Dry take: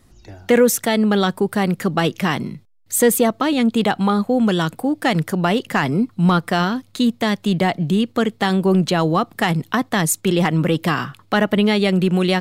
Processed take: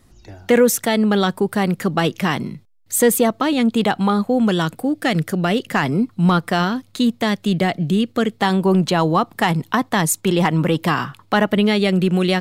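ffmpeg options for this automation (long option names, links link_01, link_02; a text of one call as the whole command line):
ffmpeg -i in.wav -af "asetnsamples=nb_out_samples=441:pad=0,asendcmd='4.75 equalizer g -9;5.72 equalizer g 0;7.34 equalizer g -6.5;8.39 equalizer g 5;11.47 equalizer g -3',equalizer=frequency=940:width_type=o:width=0.4:gain=0.5" out.wav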